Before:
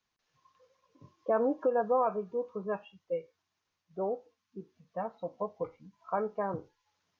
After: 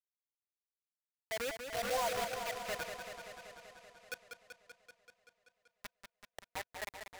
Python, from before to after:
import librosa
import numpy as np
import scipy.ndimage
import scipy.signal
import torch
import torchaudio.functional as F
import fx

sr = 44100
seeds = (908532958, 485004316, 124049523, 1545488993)

p1 = fx.spec_topn(x, sr, count=4)
p2 = scipy.signal.sosfilt(scipy.signal.butter(4, 62.0, 'highpass', fs=sr, output='sos'), p1)
p3 = fx.spec_gate(p2, sr, threshold_db=-25, keep='strong')
p4 = p3 + fx.echo_single(p3, sr, ms=427, db=-5.0, dry=0)
p5 = fx.auto_swell(p4, sr, attack_ms=205.0)
p6 = fx.low_shelf(p5, sr, hz=140.0, db=-4.0)
p7 = fx.fixed_phaser(p6, sr, hz=770.0, stages=4)
p8 = fx.quant_dither(p7, sr, seeds[0], bits=6, dither='none')
p9 = fx.curve_eq(p8, sr, hz=(100.0, 410.0, 1900.0, 3300.0), db=(0, -8, 1, -2))
p10 = fx.echo_warbled(p9, sr, ms=192, feedback_pct=73, rate_hz=2.8, cents=62, wet_db=-7)
y = p10 * 10.0 ** (1.0 / 20.0)